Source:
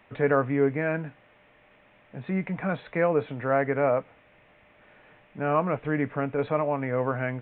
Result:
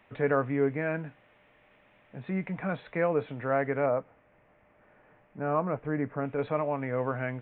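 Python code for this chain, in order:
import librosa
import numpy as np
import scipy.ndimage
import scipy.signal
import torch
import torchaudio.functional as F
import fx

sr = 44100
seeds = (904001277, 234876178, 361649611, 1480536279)

y = fx.lowpass(x, sr, hz=1600.0, slope=12, at=(3.86, 6.25))
y = y * librosa.db_to_amplitude(-3.5)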